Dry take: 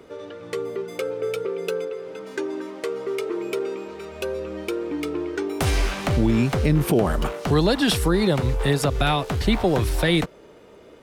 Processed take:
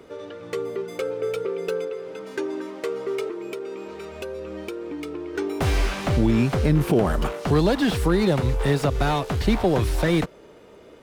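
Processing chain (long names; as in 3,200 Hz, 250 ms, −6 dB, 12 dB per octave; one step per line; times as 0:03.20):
0:03.28–0:05.35: downward compressor 4 to 1, threshold −30 dBFS, peak gain reduction 7.5 dB
slew-rate limiting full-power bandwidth 110 Hz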